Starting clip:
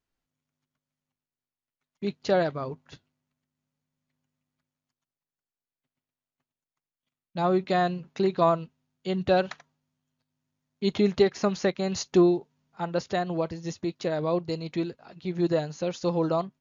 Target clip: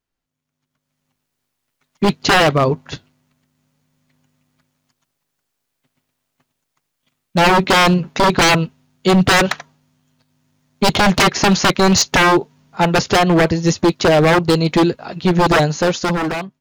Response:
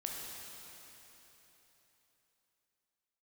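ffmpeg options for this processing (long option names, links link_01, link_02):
-af "aeval=exprs='0.0531*(abs(mod(val(0)/0.0531+3,4)-2)-1)':channel_layout=same,dynaudnorm=framelen=210:gausssize=9:maxgain=16dB,volume=3dB"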